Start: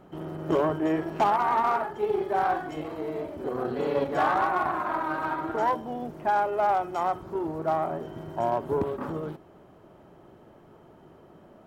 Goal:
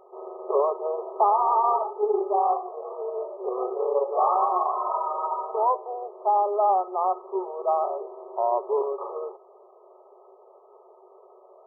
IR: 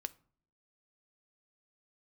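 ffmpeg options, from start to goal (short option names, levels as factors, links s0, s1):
-af "afftfilt=real='re*between(b*sr/4096,360,1300)':imag='im*between(b*sr/4096,360,1300)':win_size=4096:overlap=0.75,volume=1.41"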